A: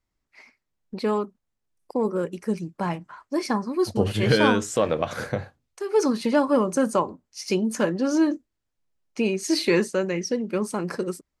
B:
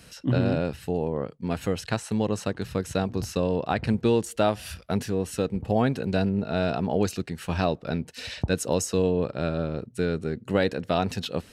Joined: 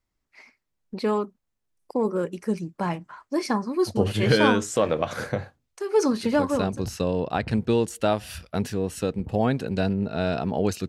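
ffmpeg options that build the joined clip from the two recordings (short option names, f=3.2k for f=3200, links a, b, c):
-filter_complex "[0:a]apad=whole_dur=10.88,atrim=end=10.88,atrim=end=6.84,asetpts=PTS-STARTPTS[a];[1:a]atrim=start=2.44:end=7.24,asetpts=PTS-STARTPTS[b];[a][b]acrossfade=d=0.76:c1=qsin:c2=qsin"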